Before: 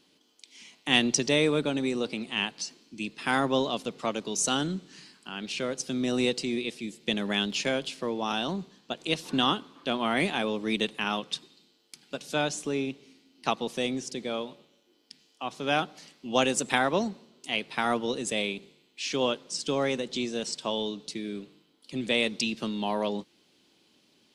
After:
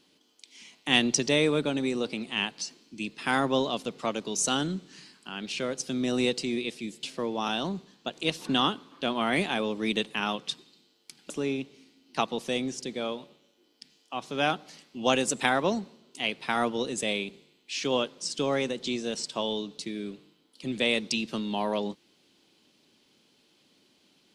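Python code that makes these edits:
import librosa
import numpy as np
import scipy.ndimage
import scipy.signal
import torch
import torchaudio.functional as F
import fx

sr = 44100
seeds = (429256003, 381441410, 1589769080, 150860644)

y = fx.edit(x, sr, fx.cut(start_s=7.03, length_s=0.84),
    fx.cut(start_s=12.14, length_s=0.45), tone=tone)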